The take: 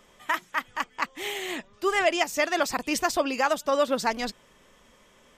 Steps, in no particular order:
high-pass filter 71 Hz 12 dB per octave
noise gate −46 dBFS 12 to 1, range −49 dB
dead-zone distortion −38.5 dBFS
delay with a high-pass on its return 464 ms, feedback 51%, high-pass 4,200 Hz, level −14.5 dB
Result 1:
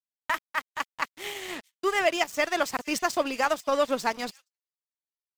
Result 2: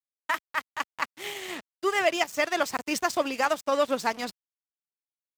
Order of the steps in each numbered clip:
high-pass filter, then dead-zone distortion, then delay with a high-pass on its return, then noise gate
delay with a high-pass on its return, then noise gate, then dead-zone distortion, then high-pass filter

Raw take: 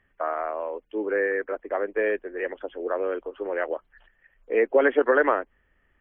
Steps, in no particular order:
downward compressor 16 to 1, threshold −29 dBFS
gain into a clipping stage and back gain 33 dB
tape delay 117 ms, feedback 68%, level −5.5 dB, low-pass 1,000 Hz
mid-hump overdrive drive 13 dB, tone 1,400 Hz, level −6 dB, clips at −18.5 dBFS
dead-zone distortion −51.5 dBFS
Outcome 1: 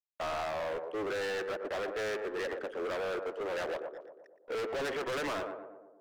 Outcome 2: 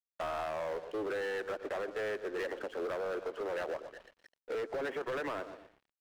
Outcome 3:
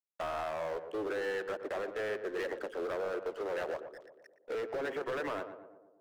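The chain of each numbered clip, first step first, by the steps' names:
dead-zone distortion, then tape delay, then mid-hump overdrive, then gain into a clipping stage and back, then downward compressor
mid-hump overdrive, then tape delay, then dead-zone distortion, then downward compressor, then gain into a clipping stage and back
mid-hump overdrive, then dead-zone distortion, then downward compressor, then gain into a clipping stage and back, then tape delay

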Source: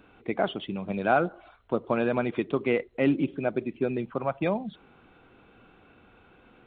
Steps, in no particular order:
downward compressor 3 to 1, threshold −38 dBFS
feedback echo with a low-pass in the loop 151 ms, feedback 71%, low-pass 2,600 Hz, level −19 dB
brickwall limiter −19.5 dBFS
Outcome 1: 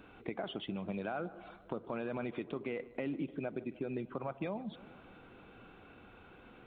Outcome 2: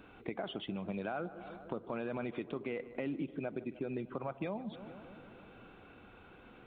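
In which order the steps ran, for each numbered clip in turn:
brickwall limiter, then downward compressor, then feedback echo with a low-pass in the loop
brickwall limiter, then feedback echo with a low-pass in the loop, then downward compressor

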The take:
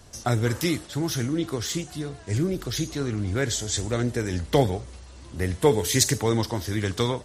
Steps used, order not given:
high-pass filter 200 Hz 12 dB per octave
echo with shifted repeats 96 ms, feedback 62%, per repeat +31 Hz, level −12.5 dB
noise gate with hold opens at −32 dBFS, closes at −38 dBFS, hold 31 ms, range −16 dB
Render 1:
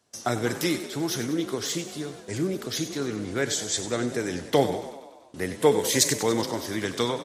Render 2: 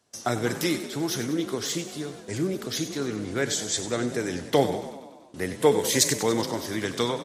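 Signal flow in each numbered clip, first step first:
noise gate with hold, then high-pass filter, then echo with shifted repeats
noise gate with hold, then echo with shifted repeats, then high-pass filter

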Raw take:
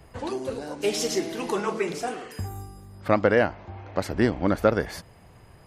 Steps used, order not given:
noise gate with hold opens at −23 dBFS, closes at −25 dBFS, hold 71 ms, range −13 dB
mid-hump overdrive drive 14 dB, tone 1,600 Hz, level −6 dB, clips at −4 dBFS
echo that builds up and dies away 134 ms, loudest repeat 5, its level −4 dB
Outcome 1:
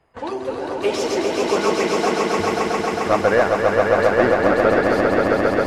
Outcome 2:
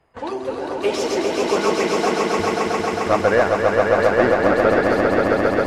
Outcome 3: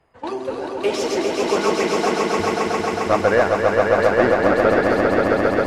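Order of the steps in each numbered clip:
mid-hump overdrive, then echo that builds up and dies away, then noise gate with hold
mid-hump overdrive, then noise gate with hold, then echo that builds up and dies away
noise gate with hold, then mid-hump overdrive, then echo that builds up and dies away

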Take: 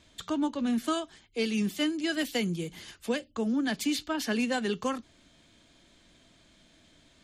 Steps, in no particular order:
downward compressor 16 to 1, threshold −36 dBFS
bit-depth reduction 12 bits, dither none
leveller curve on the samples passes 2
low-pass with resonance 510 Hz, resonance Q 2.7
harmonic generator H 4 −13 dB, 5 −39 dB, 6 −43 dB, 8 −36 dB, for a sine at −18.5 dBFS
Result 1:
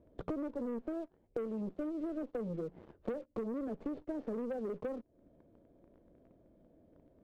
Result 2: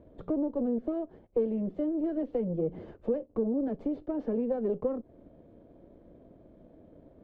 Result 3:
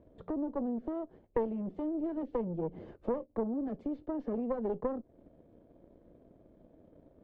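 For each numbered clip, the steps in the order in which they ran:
harmonic generator, then bit-depth reduction, then low-pass with resonance, then leveller curve on the samples, then downward compressor
bit-depth reduction, then downward compressor, then leveller curve on the samples, then harmonic generator, then low-pass with resonance
bit-depth reduction, then leveller curve on the samples, then downward compressor, then low-pass with resonance, then harmonic generator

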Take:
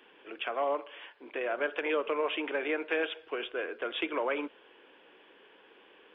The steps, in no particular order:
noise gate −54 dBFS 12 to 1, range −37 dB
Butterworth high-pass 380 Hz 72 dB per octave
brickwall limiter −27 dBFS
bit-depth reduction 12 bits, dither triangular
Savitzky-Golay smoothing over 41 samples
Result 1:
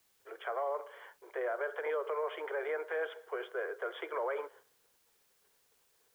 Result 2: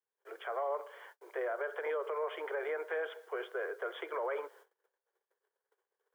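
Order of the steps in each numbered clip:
Butterworth high-pass, then noise gate, then Savitzky-Golay smoothing, then brickwall limiter, then bit-depth reduction
Savitzky-Golay smoothing, then bit-depth reduction, then noise gate, then brickwall limiter, then Butterworth high-pass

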